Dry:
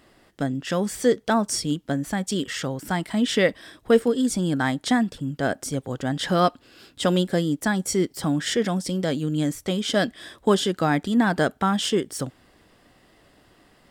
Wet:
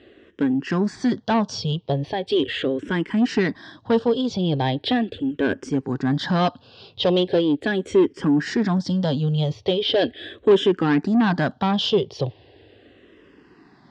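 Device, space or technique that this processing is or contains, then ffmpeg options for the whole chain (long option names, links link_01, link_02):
barber-pole phaser into a guitar amplifier: -filter_complex "[0:a]asplit=2[link_01][link_02];[link_02]afreqshift=-0.39[link_03];[link_01][link_03]amix=inputs=2:normalize=1,asoftclip=type=tanh:threshold=-22dB,highpass=88,equalizer=frequency=99:width_type=q:width=4:gain=7,equalizer=frequency=200:width_type=q:width=4:gain=-3,equalizer=frequency=410:width_type=q:width=4:gain=5,equalizer=frequency=640:width_type=q:width=4:gain=-3,equalizer=frequency=1300:width_type=q:width=4:gain=-8,equalizer=frequency=2100:width_type=q:width=4:gain=-7,lowpass=frequency=4200:width=0.5412,lowpass=frequency=4200:width=1.3066,volume=9dB"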